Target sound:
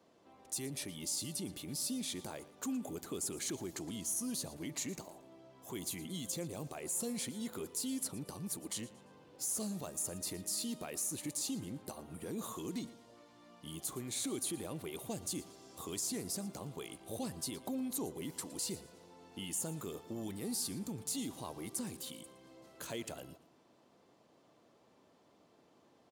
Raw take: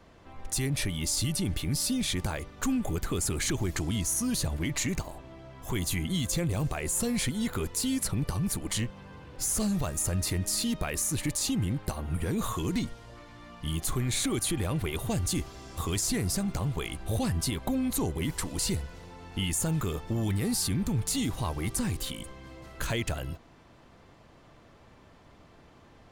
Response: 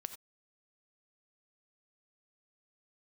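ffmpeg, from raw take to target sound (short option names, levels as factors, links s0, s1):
-af "highpass=250,equalizer=f=1800:t=o:w=1.8:g=-9,aecho=1:1:115|230|345:0.126|0.0403|0.0129,volume=0.473"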